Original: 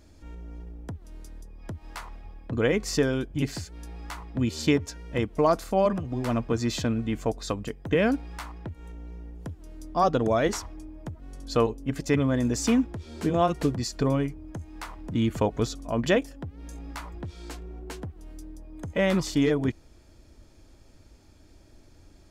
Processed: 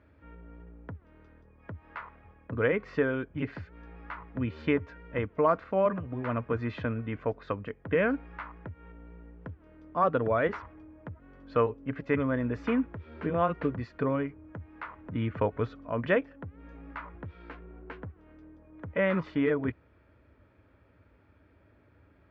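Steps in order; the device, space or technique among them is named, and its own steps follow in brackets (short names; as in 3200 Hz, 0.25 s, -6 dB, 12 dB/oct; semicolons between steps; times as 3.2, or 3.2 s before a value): bass cabinet (speaker cabinet 74–2300 Hz, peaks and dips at 84 Hz -4 dB, 140 Hz -8 dB, 220 Hz -7 dB, 340 Hz -8 dB, 750 Hz -8 dB, 1400 Hz +3 dB)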